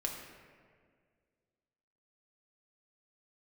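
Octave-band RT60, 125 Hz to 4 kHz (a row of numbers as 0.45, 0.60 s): 2.2, 2.2, 2.2, 1.7, 1.7, 1.1 s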